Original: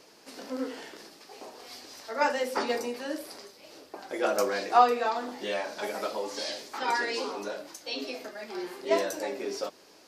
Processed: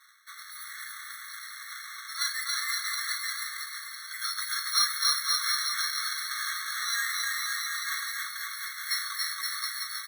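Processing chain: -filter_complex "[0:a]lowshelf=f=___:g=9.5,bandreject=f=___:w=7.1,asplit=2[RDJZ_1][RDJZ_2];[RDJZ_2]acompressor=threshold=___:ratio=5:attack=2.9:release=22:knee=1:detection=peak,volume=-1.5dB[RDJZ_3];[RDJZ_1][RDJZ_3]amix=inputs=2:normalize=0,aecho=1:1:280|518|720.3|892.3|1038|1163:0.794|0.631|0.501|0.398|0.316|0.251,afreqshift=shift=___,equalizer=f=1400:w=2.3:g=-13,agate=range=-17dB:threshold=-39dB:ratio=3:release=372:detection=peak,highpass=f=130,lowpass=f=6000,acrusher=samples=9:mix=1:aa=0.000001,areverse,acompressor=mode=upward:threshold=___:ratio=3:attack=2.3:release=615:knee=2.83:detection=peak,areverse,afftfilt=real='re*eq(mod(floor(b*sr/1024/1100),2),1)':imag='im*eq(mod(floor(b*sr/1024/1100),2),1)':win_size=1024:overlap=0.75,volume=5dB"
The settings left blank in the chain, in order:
500, 1200, -33dB, -44, -24dB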